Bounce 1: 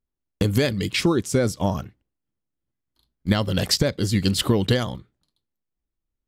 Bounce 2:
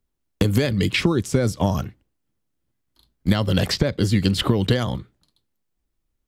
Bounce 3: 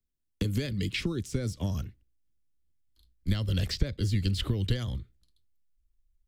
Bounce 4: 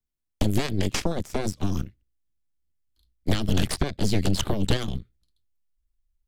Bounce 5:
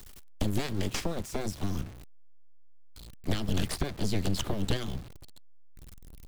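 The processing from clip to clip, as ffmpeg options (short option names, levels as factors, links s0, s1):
-filter_complex "[0:a]acrossover=split=150|3500[s0][s1][s2];[s0]acompressor=threshold=0.0355:ratio=4[s3];[s1]acompressor=threshold=0.0447:ratio=4[s4];[s2]acompressor=threshold=0.00708:ratio=4[s5];[s3][s4][s5]amix=inputs=3:normalize=0,volume=2.37"
-filter_complex "[0:a]asubboost=boost=6:cutoff=71,acrossover=split=170|620|6500[s0][s1][s2][s3];[s3]asoftclip=type=tanh:threshold=0.0141[s4];[s0][s1][s2][s4]amix=inputs=4:normalize=0,equalizer=f=850:t=o:w=1.7:g=-13,volume=0.398"
-af "aeval=exprs='0.266*(cos(1*acos(clip(val(0)/0.266,-1,1)))-cos(1*PI/2))+0.00944*(cos(7*acos(clip(val(0)/0.266,-1,1)))-cos(7*PI/2))+0.106*(cos(8*acos(clip(val(0)/0.266,-1,1)))-cos(8*PI/2))':c=same"
-af "aeval=exprs='val(0)+0.5*0.02*sgn(val(0))':c=same,volume=0.473"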